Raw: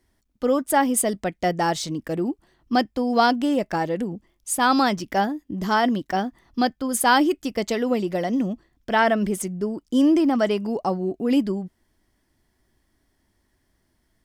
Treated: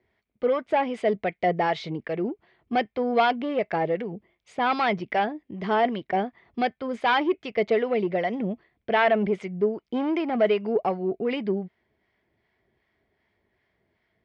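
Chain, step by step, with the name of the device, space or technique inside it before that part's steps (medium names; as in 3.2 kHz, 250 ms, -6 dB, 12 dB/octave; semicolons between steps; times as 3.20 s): guitar amplifier with harmonic tremolo (harmonic tremolo 2.6 Hz, depth 50%, crossover 780 Hz; saturation -17 dBFS, distortion -14 dB; cabinet simulation 95–3700 Hz, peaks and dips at 280 Hz -8 dB, 430 Hz +8 dB, 670 Hz +5 dB, 2.2 kHz +10 dB)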